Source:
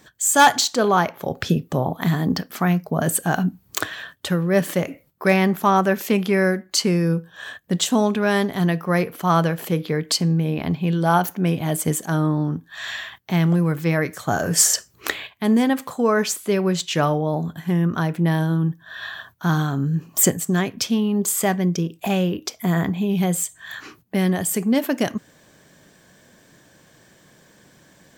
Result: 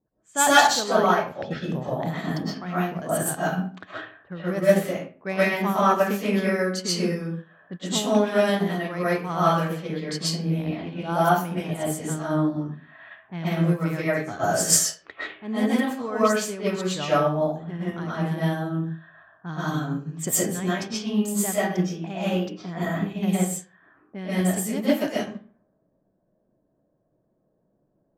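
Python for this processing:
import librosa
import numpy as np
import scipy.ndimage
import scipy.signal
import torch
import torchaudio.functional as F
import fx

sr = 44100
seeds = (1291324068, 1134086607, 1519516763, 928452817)

y = fx.env_lowpass(x, sr, base_hz=650.0, full_db=-19.0)
y = fx.rev_freeverb(y, sr, rt60_s=0.56, hf_ratio=0.7, predelay_ms=85, drr_db=-8.5)
y = fx.env_lowpass(y, sr, base_hz=990.0, full_db=-10.0)
y = fx.upward_expand(y, sr, threshold_db=-32.0, expansion=1.5)
y = F.gain(torch.from_numpy(y), -7.5).numpy()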